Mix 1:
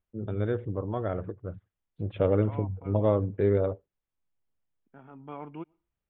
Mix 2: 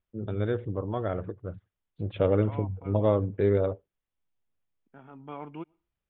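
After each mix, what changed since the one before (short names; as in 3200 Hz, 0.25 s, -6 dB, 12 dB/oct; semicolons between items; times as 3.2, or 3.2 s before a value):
master: remove air absorption 200 m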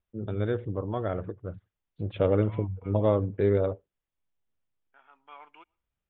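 second voice: add HPF 1200 Hz 12 dB/oct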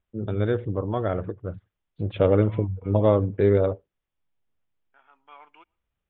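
first voice +4.5 dB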